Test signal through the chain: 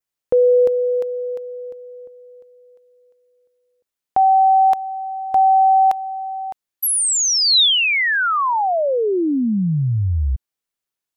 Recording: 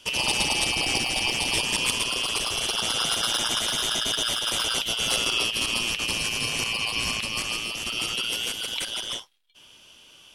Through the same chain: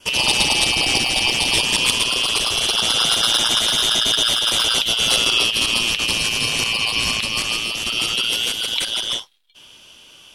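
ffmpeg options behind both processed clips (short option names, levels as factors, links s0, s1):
-af "adynamicequalizer=threshold=0.00891:dfrequency=3800:dqfactor=2.9:tfrequency=3800:tqfactor=2.9:attack=5:release=100:ratio=0.375:range=3:mode=boostabove:tftype=bell,volume=1.88"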